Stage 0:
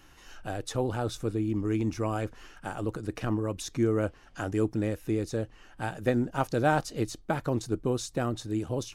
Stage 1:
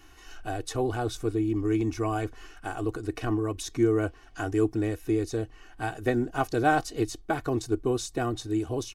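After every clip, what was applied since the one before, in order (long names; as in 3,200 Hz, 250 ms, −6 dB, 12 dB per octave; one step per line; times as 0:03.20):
comb filter 2.7 ms, depth 69%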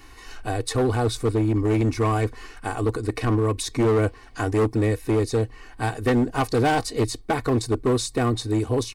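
EQ curve with evenly spaced ripples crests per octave 0.95, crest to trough 7 dB
hard clipping −23 dBFS, distortion −12 dB
level +7 dB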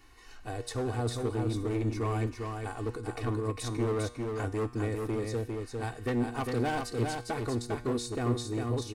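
tuned comb filter 120 Hz, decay 0.84 s, harmonics all, mix 60%
single-tap delay 402 ms −4 dB
level −4 dB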